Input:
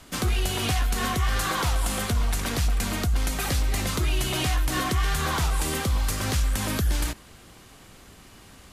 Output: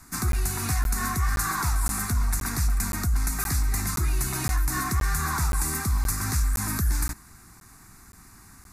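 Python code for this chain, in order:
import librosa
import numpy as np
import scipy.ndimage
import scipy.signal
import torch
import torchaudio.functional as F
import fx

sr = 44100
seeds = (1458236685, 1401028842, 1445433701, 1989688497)

y = fx.high_shelf(x, sr, hz=4600.0, db=5.5)
y = fx.fixed_phaser(y, sr, hz=1300.0, stages=4)
y = fx.buffer_crackle(y, sr, first_s=0.32, period_s=0.52, block=512, kind='zero')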